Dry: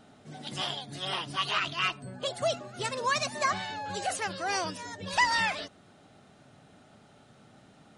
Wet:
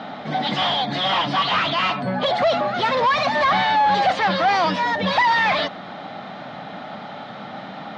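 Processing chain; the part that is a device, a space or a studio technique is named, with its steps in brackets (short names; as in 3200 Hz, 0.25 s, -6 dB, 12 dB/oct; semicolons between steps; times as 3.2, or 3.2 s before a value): overdrive pedal into a guitar cabinet (overdrive pedal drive 32 dB, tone 5400 Hz, clips at -12.5 dBFS; speaker cabinet 98–3700 Hz, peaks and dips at 190 Hz +6 dB, 400 Hz -9 dB, 810 Hz +3 dB, 1500 Hz -4 dB, 2700 Hz -8 dB); gain +2.5 dB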